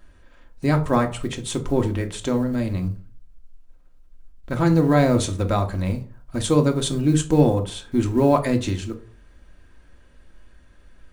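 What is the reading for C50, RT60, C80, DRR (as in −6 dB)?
14.5 dB, 0.45 s, 19.5 dB, 4.5 dB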